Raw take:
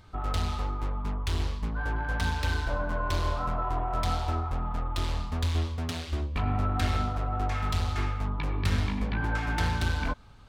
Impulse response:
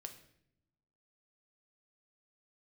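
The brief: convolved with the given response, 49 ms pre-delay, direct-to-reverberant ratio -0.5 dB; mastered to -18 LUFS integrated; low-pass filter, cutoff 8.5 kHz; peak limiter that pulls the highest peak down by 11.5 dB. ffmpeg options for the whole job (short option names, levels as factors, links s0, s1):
-filter_complex "[0:a]lowpass=8500,alimiter=level_in=1.26:limit=0.0631:level=0:latency=1,volume=0.794,asplit=2[s0][s1];[1:a]atrim=start_sample=2205,adelay=49[s2];[s1][s2]afir=irnorm=-1:irlink=0,volume=1.88[s3];[s0][s3]amix=inputs=2:normalize=0,volume=5.01"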